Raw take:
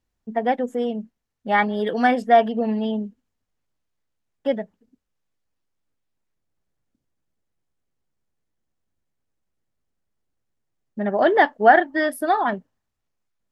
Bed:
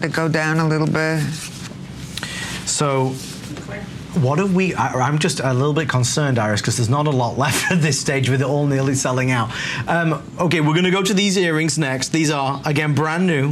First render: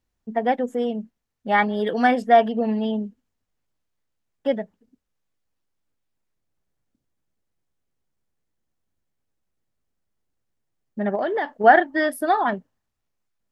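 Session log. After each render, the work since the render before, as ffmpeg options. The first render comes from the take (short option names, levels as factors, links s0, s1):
-filter_complex "[0:a]asettb=1/sr,asplit=3[s0][s1][s2];[s0]atrim=end=11.154[s3];[s1]atrim=start=11.15:end=11.64,asetpts=PTS-STARTPTS,afade=t=in:d=0.004:c=qsin,afade=t=out:st=0.486:d=0.004:c=qsin,acompressor=threshold=0.0891:ratio=6:attack=3.2:release=140:knee=1:detection=peak[s4];[s2]atrim=start=11.636[s5];[s3][s4]acrossfade=d=0.004:c1=hsin:c2=qsin[s6];[s6][s5]acrossfade=d=0.004:c1=qsin:c2=hsin"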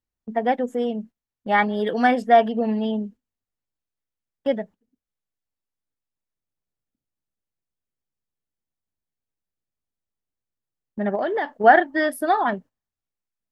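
-af "agate=range=0.282:threshold=0.00891:ratio=16:detection=peak"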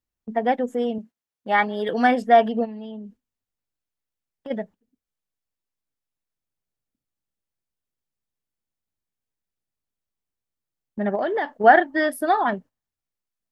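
-filter_complex "[0:a]asettb=1/sr,asplit=3[s0][s1][s2];[s0]atrim=end=0.984[s3];[s1]atrim=start=0.98:end=1.89,asetpts=PTS-STARTPTS,afade=t=in:d=0.004:c=qsin,afade=t=out:st=0.906:d=0.004:c=qsin,highpass=f=310:p=1[s4];[s2]atrim=start=1.886[s5];[s3][s4]acrossfade=d=0.004:c1=hsin:c2=qsin[s6];[s6][s5]acrossfade=d=0.004:c1=qsin:c2=hsin,asplit=3[s7][s8][s9];[s7]afade=t=out:st=2.64:d=0.02[s10];[s8]acompressor=threshold=0.02:ratio=5:attack=3.2:release=140:knee=1:detection=peak,afade=t=in:st=2.64:d=0.02,afade=t=out:st=4.5:d=0.02[s11];[s9]afade=t=in:st=4.5:d=0.02[s12];[s10][s11][s12]amix=inputs=3:normalize=0"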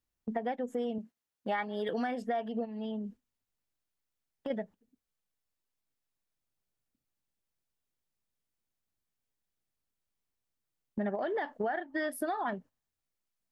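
-af "alimiter=limit=0.224:level=0:latency=1:release=416,acompressor=threshold=0.0251:ratio=4"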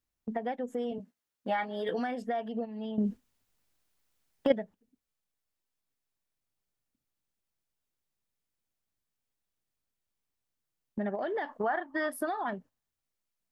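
-filter_complex "[0:a]asettb=1/sr,asplit=3[s0][s1][s2];[s0]atrim=end=0.904[s3];[s1]atrim=start=0.9:end=1.99,asetpts=PTS-STARTPTS,afade=t=in:d=0.004:c=qsin,afade=t=out:st=1.086:d=0.004:c=qsin,asplit=2[s4][s5];[s5]adelay=16,volume=0.562[s6];[s4][s6]amix=inputs=2:normalize=0,atrim=end_sample=48069[s7];[s2]atrim=start=1.986[s8];[s3][s7]acrossfade=d=0.004:c1=hsin:c2=qsin[s9];[s9][s8]acrossfade=d=0.004:c1=qsin:c2=hsin,asettb=1/sr,asplit=3[s10][s11][s12];[s10]atrim=end=11.494[s13];[s11]atrim=start=11.49:end=12.28,asetpts=PTS-STARTPTS,afade=t=in:d=0.004:c=qsin,afade=t=out:st=0.786:d=0.004:c=qsin,equalizer=f=1100:w=2.5:g=14[s14];[s12]atrim=start=12.276[s15];[s13][s14]acrossfade=d=0.004:c1=hsin:c2=qsin[s16];[s16][s15]acrossfade=d=0.004:c1=qsin:c2=hsin,asplit=3[s17][s18][s19];[s17]atrim=end=2.982[s20];[s18]atrim=start=2.978:end=4.522,asetpts=PTS-STARTPTS,volume=3.35[s21];[s19]atrim=start=4.518[s22];[s20][s21]acrossfade=d=0.004:c1=hsin:c2=hsin[s23];[s23][s22]acrossfade=d=0.004:c1=hsin:c2=hsin"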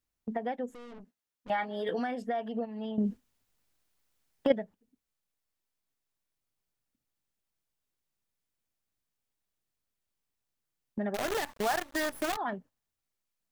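-filter_complex "[0:a]asettb=1/sr,asplit=3[s0][s1][s2];[s0]atrim=end=0.704[s3];[s1]atrim=start=0.7:end=1.5,asetpts=PTS-STARTPTS,afade=t=in:d=0.004:c=qsin,afade=t=out:st=0.796:d=0.004:c=qsin,aeval=exprs='(tanh(200*val(0)+0.65)-tanh(0.65))/200':c=same[s4];[s2]atrim=start=1.496[s5];[s3][s4]acrossfade=d=0.004:c1=hsin:c2=qsin[s6];[s6][s5]acrossfade=d=0.004:c1=qsin:c2=hsin,asettb=1/sr,asplit=3[s7][s8][s9];[s7]atrim=end=2.464[s10];[s8]atrim=start=2.46:end=2.93,asetpts=PTS-STARTPTS,afade=t=in:d=0.004:c=qsin,afade=t=out:st=0.466:d=0.004:c=qsin,equalizer=f=1300:t=o:w=1.5:g=4.5[s11];[s9]atrim=start=2.926[s12];[s10][s11]acrossfade=d=0.004:c1=hsin:c2=qsin[s13];[s13][s12]acrossfade=d=0.004:c1=qsin:c2=hsin,asettb=1/sr,asplit=3[s14][s15][s16];[s14]atrim=end=11.144[s17];[s15]atrim=start=11.14:end=12.37,asetpts=PTS-STARTPTS,afade=t=in:d=0.004:c=qsin,afade=t=out:st=1.226:d=0.004:c=qsin,acrusher=bits=6:dc=4:mix=0:aa=0.000001[s18];[s16]atrim=start=12.366[s19];[s17][s18]acrossfade=d=0.004:c1=hsin:c2=qsin[s20];[s20][s19]acrossfade=d=0.004:c1=qsin:c2=hsin"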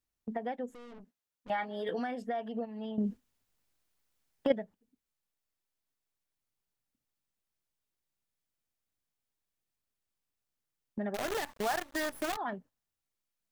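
-af "volume=0.75"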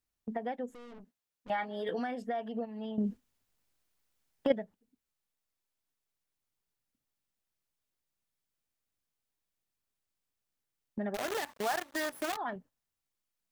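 -filter_complex "[0:a]asettb=1/sr,asplit=3[s0][s1][s2];[s0]atrim=end=11.174[s3];[s1]atrim=start=11.17:end=12.56,asetpts=PTS-STARTPTS,afade=t=in:d=0.004:c=qsin,afade=t=out:st=1.386:d=0.004:c=qsin,highpass=f=200:p=1[s4];[s2]atrim=start=12.556[s5];[s3][s4]acrossfade=d=0.004:c1=hsin:c2=qsin[s6];[s6][s5]acrossfade=d=0.004:c1=qsin:c2=hsin"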